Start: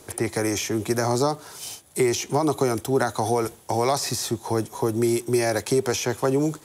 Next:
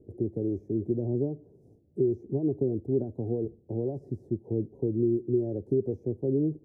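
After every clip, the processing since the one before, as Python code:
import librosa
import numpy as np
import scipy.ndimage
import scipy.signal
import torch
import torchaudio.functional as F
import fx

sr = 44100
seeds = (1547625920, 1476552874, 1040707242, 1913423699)

y = scipy.signal.sosfilt(scipy.signal.cheby2(4, 50, 1100.0, 'lowpass', fs=sr, output='sos'), x)
y = F.gain(torch.from_numpy(y), -3.0).numpy()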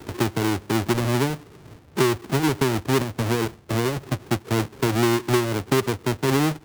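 y = fx.halfwave_hold(x, sr)
y = fx.band_squash(y, sr, depth_pct=40)
y = F.gain(torch.from_numpy(y), 3.0).numpy()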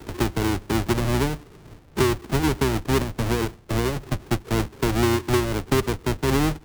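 y = fx.octave_divider(x, sr, octaves=2, level_db=-4.0)
y = F.gain(torch.from_numpy(y), -1.0).numpy()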